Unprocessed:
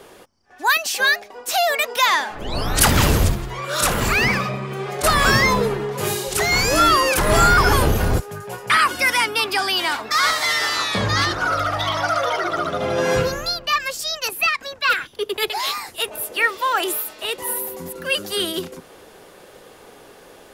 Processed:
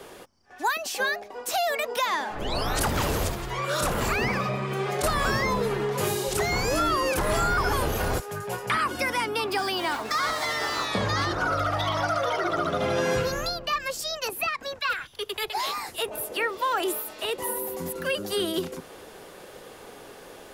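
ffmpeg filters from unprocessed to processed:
-filter_complex "[0:a]asettb=1/sr,asplit=3[a][b][c];[a]atrim=end=9.514[d];[b]atrim=start=9.51:end=10.86,asetpts=PTS-STARTPTS,afade=t=in:d=0.004:c=qsin,afade=t=out:st=1.346:d=0.004:c=qsin,acrusher=bits=5:mix=0:aa=0.5[e];[c]atrim=start=10.856[f];[d][e]acrossfade=d=0.004:c1=hsin:c2=qsin[g];[g][f]acrossfade=d=0.004:c1=qsin:c2=hsin,asettb=1/sr,asplit=3[h][i][j];[h]atrim=end=14.794[k];[i]atrim=start=14.79:end=15.55,asetpts=PTS-STARTPTS,afade=t=in:d=0.004:c=qsin,afade=t=out:st=0.756:d=0.004:c=qsin,equalizer=f=310:t=o:w=2.1:g=-11.5[l];[j]atrim=start=15.546[m];[k][l]acrossfade=d=0.004:c1=hsin:c2=qsin[n];[n][m]acrossfade=d=0.004:c1=qsin:c2=hsin,acrossover=split=370|1100[o][p][q];[o]acompressor=threshold=-29dB:ratio=4[r];[p]acompressor=threshold=-28dB:ratio=4[s];[q]acompressor=threshold=-31dB:ratio=4[t];[r][s][t]amix=inputs=3:normalize=0"

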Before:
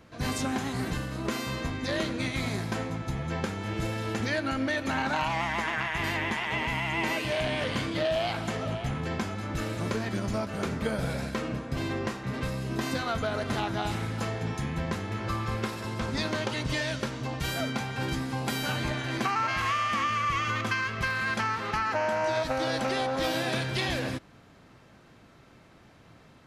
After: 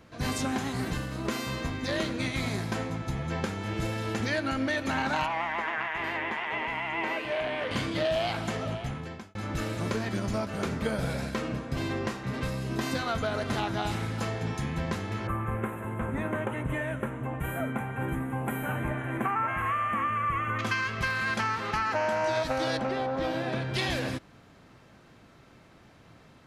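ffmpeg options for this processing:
-filter_complex "[0:a]asettb=1/sr,asplit=3[a][b][c];[a]atrim=end=0.714[d];[b]atrim=start=0.71:end=2.19,asetpts=PTS-STARTPTS,afade=t=in:d=0.004:c=qsin,afade=t=out:st=1.476:d=0.004:c=qsin,aeval=exprs='sgn(val(0))*max(abs(val(0))-0.00112,0)':c=same[e];[c]atrim=start=2.186[f];[d][e]acrossfade=d=0.004:c1=hsin:c2=qsin[g];[g][f]acrossfade=d=0.004:c1=qsin:c2=hsin,asettb=1/sr,asplit=3[h][i][j];[h]atrim=end=5.264[k];[i]atrim=start=5.26:end=7.71,asetpts=PTS-STARTPTS,afade=t=in:d=0.004:c=qsin,afade=t=out:st=2.446:d=0.004:c=qsin,acrossover=split=300 2900:gain=0.224 1 0.178[l][m][n];[l][m][n]amix=inputs=3:normalize=0[o];[j]atrim=start=7.706[p];[k][o]acrossfade=d=0.004:c1=hsin:c2=qsin[q];[q][p]acrossfade=d=0.004:c1=qsin:c2=hsin,asettb=1/sr,asplit=3[r][s][t];[r]atrim=end=15.274[u];[s]atrim=start=15.27:end=20.59,asetpts=PTS-STARTPTS,afade=t=in:d=0.004:c=qsin,afade=t=out:st=5.316:d=0.004:c=qsin,asuperstop=centerf=4800:order=4:qfactor=0.58[v];[t]atrim=start=20.586[w];[u][v]acrossfade=d=0.004:c1=hsin:c2=qsin[x];[x][w]acrossfade=d=0.004:c1=qsin:c2=hsin,asettb=1/sr,asplit=3[y][z][aa];[y]atrim=end=22.774[ab];[z]atrim=start=22.77:end=23.74,asetpts=PTS-STARTPTS,afade=t=in:d=0.004:c=qsin,afade=t=out:st=0.966:d=0.004:c=qsin,lowpass=f=1.3k:p=1[ac];[aa]atrim=start=23.736[ad];[ab][ac]acrossfade=d=0.004:c1=hsin:c2=qsin[ae];[ae][ad]acrossfade=d=0.004:c1=qsin:c2=hsin,asplit=2[af][ag];[af]atrim=end=9.35,asetpts=PTS-STARTPTS,afade=t=out:st=8.42:d=0.93:c=qsin[ah];[ag]atrim=start=9.35,asetpts=PTS-STARTPTS,afade=t=in:d=0.004:c=hsin[ai];[ah][ai]concat=n=2:v=0:a=1"

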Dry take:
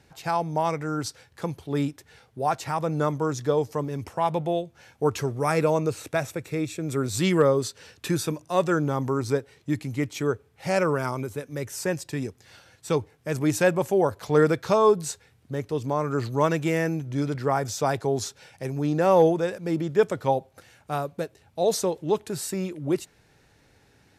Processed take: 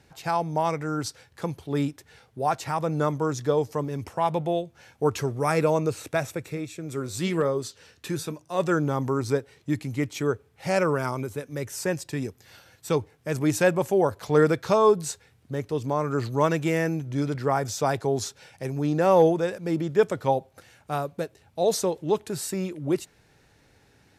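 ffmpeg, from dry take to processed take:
-filter_complex "[0:a]asplit=3[a][b][c];[a]afade=t=out:st=6.52:d=0.02[d];[b]flanger=delay=4.5:depth=9.1:regen=76:speed=1.2:shape=sinusoidal,afade=t=in:st=6.52:d=0.02,afade=t=out:st=8.59:d=0.02[e];[c]afade=t=in:st=8.59:d=0.02[f];[d][e][f]amix=inputs=3:normalize=0,asettb=1/sr,asplit=3[g][h][i];[g]atrim=end=12.244[j];[h]atrim=start=12.24:end=12.89,asetpts=PTS-STARTPTS,afade=t=in:d=0.004:c=qsin,afade=t=out:st=0.646:d=0.004:c=qsin,equalizer=f=13k:w=4.3:g=11.5[k];[i]atrim=start=12.886[l];[j][k]acrossfade=d=0.004:c1=hsin:c2=qsin[m];[m][l]acrossfade=d=0.004:c1=qsin:c2=hsin"

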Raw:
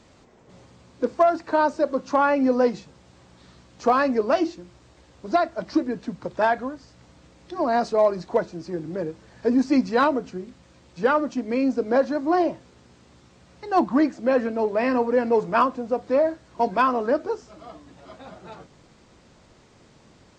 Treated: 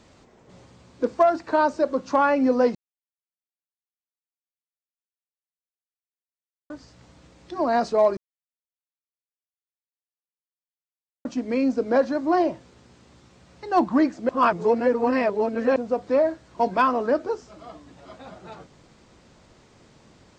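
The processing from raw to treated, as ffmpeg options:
-filter_complex "[0:a]asplit=7[a][b][c][d][e][f][g];[a]atrim=end=2.75,asetpts=PTS-STARTPTS,afade=t=out:st=2.746:d=0.004:c=hsin[h];[b]atrim=start=2.75:end=6.7,asetpts=PTS-STARTPTS,volume=0[i];[c]atrim=start=6.7:end=8.17,asetpts=PTS-STARTPTS,afade=t=in:d=0.004:c=hsin,afade=t=out:st=1.466:d=0.004:c=hsin[j];[d]atrim=start=8.17:end=11.25,asetpts=PTS-STARTPTS,volume=0[k];[e]atrim=start=11.25:end=14.292,asetpts=PTS-STARTPTS,afade=t=in:d=0.004:c=hsin[l];[f]atrim=start=14.288:end=15.762,asetpts=PTS-STARTPTS,areverse[m];[g]atrim=start=15.758[n];[h][i][j][k][l]concat=n=5:v=0:a=1[o];[o][m]acrossfade=d=0.004:c1=hsin:c2=hsin[p];[p][n]acrossfade=d=0.004:c1=hsin:c2=hsin"

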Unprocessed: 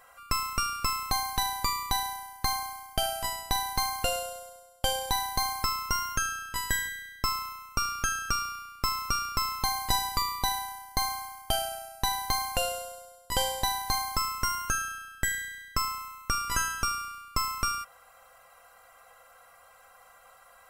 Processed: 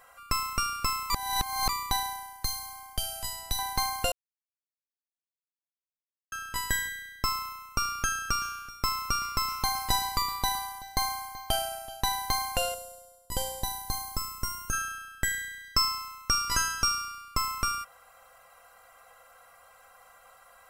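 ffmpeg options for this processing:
-filter_complex "[0:a]asettb=1/sr,asplit=3[a][b][c];[a]atrim=end=2.434[d];[b]atrim=start=2.43:end=3.59,asetpts=PTS-STARTPTS,afade=t=in:d=0.004:c=qsin,afade=t=out:st=1.156:d=0.004:c=qsin,acrossover=split=160|3000[e][f][g];[f]acompressor=threshold=-42dB:ratio=6:attack=3.2:release=140:knee=2.83:detection=peak[h];[e][h][g]amix=inputs=3:normalize=0[i];[c]atrim=start=3.586[j];[d][i]acrossfade=d=0.004:c1=hsin:c2=qsin[k];[k][j]acrossfade=d=0.004:c1=qsin:c2=hsin,asettb=1/sr,asplit=3[l][m][n];[l]atrim=end=8.034[o];[m]atrim=start=8.03:end=12.01,asetpts=PTS-STARTPTS,afade=t=in:d=0.004:c=qsin,afade=t=out:st=3.976:d=0.004:c=qsin,aecho=1:1:381:0.119,atrim=end_sample=175518[p];[n]atrim=start=12.006[q];[o][p]acrossfade=d=0.004:c1=hsin:c2=qsin[r];[r][q]acrossfade=d=0.004:c1=qsin:c2=hsin,asettb=1/sr,asplit=3[s][t][u];[s]atrim=end=12.744[v];[t]atrim=start=12.74:end=14.73,asetpts=PTS-STARTPTS,afade=t=in:d=0.004:c=qsin,afade=t=out:st=1.986:d=0.004:c=qsin,equalizer=f=1.8k:w=0.41:g=-10.5[w];[u]atrim=start=14.726[x];[v][w]acrossfade=d=0.004:c1=hsin:c2=qsin[y];[y][x]acrossfade=d=0.004:c1=qsin:c2=hsin,asettb=1/sr,asplit=3[z][aa][ab];[z]atrim=end=15.644[ac];[aa]atrim=start=15.64:end=17.34,asetpts=PTS-STARTPTS,afade=t=in:d=0.004:c=qsin,afade=t=out:st=1.696:d=0.004:c=qsin,equalizer=f=5.2k:t=o:w=0.38:g=9.5[ad];[ab]atrim=start=17.336[ae];[ac][ad]acrossfade=d=0.004:c1=hsin:c2=qsin[af];[af][ae]acrossfade=d=0.004:c1=qsin:c2=hsin,asplit=5[ag][ah][ai][aj][ak];[ag]atrim=end=1.102[al];[ah]atrim=start=1.098:end=1.692,asetpts=PTS-STARTPTS,areverse[am];[ai]atrim=start=1.688:end=4.12,asetpts=PTS-STARTPTS,afade=t=out:st=2.428:d=0.004:c=hsin[an];[aj]atrim=start=4.12:end=6.32,asetpts=PTS-STARTPTS,volume=0[ao];[ak]atrim=start=6.32,asetpts=PTS-STARTPTS,afade=t=in:d=0.004:c=hsin[ap];[al][am]acrossfade=d=0.004:c1=hsin:c2=hsin[aq];[an][ao][ap]concat=n=3:v=0:a=1[ar];[aq][ar]acrossfade=d=0.004:c1=hsin:c2=hsin"

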